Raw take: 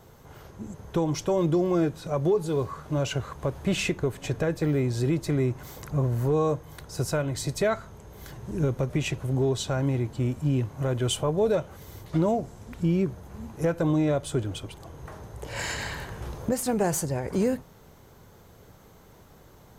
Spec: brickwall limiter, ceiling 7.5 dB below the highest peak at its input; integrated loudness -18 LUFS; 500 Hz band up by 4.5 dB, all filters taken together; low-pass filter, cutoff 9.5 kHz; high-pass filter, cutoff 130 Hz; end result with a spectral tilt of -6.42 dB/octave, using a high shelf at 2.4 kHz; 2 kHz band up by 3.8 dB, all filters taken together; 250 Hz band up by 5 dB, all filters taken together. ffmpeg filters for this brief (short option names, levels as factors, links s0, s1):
-af "highpass=130,lowpass=9500,equalizer=f=250:t=o:g=6.5,equalizer=f=500:t=o:g=3.5,equalizer=f=2000:t=o:g=9,highshelf=f=2400:g=-8.5,volume=2.99,alimiter=limit=0.422:level=0:latency=1"